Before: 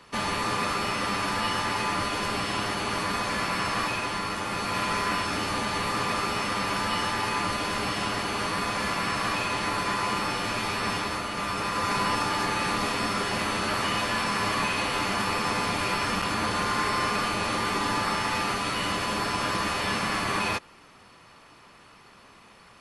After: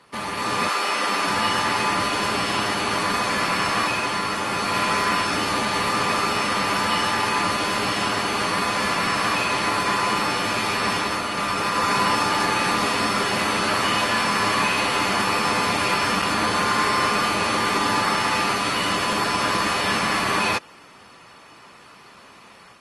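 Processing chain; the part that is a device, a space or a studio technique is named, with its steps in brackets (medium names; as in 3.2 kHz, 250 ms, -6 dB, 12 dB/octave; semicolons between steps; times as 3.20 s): 0.68–1.26 s: high-pass 540 Hz -> 210 Hz 12 dB/octave; video call (high-pass 140 Hz 6 dB/octave; level rider gain up to 6 dB; Opus 32 kbps 48 kHz)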